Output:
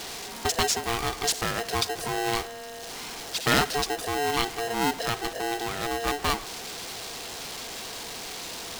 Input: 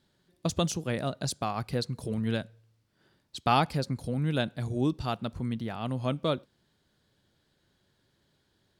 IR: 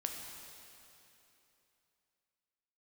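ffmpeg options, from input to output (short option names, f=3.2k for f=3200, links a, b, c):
-af "aeval=exprs='val(0)+0.5*0.0188*sgn(val(0))':c=same,equalizer=f=5.5k:w=0.64:g=8,aeval=exprs='val(0)*sgn(sin(2*PI*580*n/s))':c=same"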